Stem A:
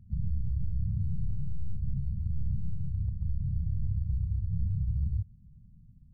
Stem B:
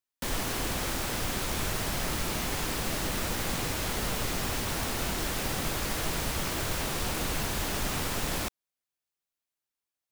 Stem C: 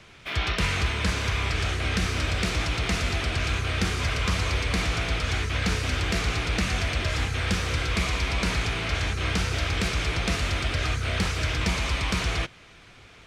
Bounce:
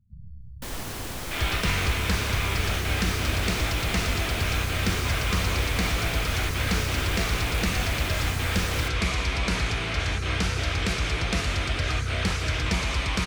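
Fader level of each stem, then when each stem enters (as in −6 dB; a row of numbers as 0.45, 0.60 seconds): −12.5, −3.5, 0.0 decibels; 0.00, 0.40, 1.05 seconds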